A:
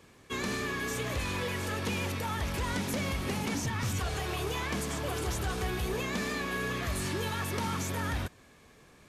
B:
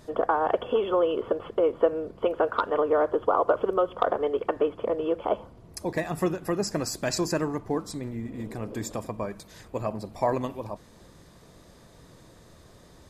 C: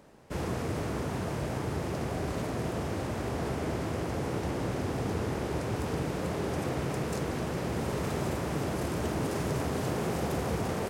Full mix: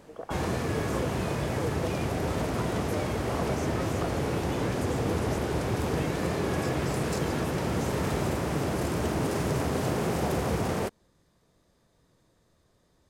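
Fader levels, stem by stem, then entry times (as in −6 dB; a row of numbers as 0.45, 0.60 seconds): −7.5, −14.5, +3.0 decibels; 0.00, 0.00, 0.00 seconds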